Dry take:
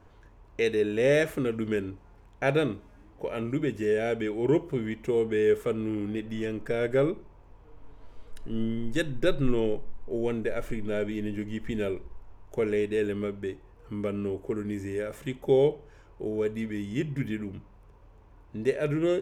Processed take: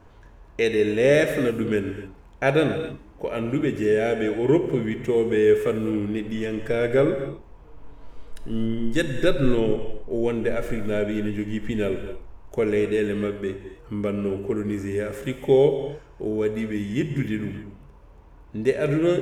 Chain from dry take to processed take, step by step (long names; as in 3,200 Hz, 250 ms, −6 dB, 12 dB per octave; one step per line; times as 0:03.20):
reverb whose tail is shaped and stops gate 300 ms flat, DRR 7 dB
level +4.5 dB